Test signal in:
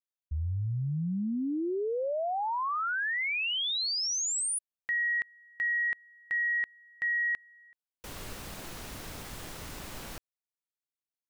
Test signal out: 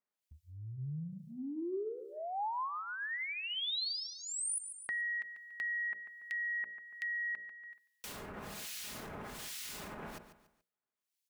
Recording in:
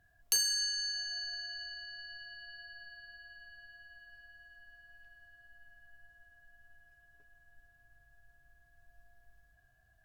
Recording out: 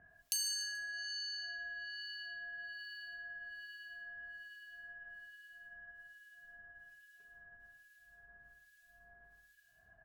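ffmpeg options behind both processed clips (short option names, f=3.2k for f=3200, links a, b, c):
-filter_complex "[0:a]bandreject=f=60:t=h:w=6,bandreject=f=120:t=h:w=6,bandreject=f=180:t=h:w=6,bandreject=f=240:t=h:w=6,bandreject=f=300:t=h:w=6,bandreject=f=360:t=h:w=6,bandreject=f=420:t=h:w=6,bandreject=f=480:t=h:w=6,bandreject=f=540:t=h:w=6,bandreject=f=600:t=h:w=6,aecho=1:1:4.8:0.35,acrossover=split=2000[a][b];[a]aeval=exprs='val(0)*(1-1/2+1/2*cos(2*PI*1.2*n/s))':c=same[c];[b]aeval=exprs='val(0)*(1-1/2-1/2*cos(2*PI*1.2*n/s))':c=same[d];[c][d]amix=inputs=2:normalize=0,asplit=2[e][f];[f]aecho=0:1:143|286|429:0.112|0.0404|0.0145[g];[e][g]amix=inputs=2:normalize=0,acompressor=threshold=-59dB:ratio=2:attack=31:release=21:knee=1:detection=rms,highpass=f=130:p=1,volume=9dB"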